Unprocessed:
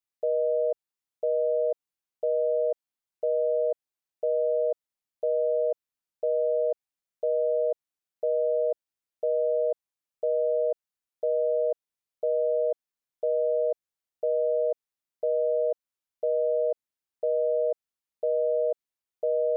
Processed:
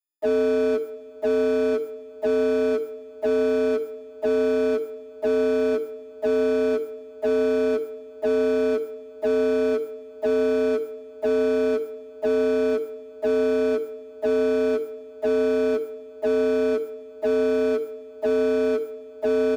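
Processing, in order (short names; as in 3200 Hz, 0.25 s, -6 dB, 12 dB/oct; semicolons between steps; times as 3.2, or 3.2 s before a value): frequency quantiser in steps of 6 st; notches 50/100/150/200/250/300/350/400/450 Hz; dispersion lows, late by 52 ms, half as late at 500 Hz; in parallel at -10 dB: hard clip -32 dBFS, distortion -7 dB; on the sum: notch 610 Hz, Q 12; sample leveller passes 5; bell 290 Hz +11 dB 1.7 oct; small resonant body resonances 330/660 Hz, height 9 dB, ringing for 25 ms; speakerphone echo 0.17 s, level -24 dB; on a send at -18.5 dB: reverb RT60 4.5 s, pre-delay 0.103 s; on the sum: gain -8 dB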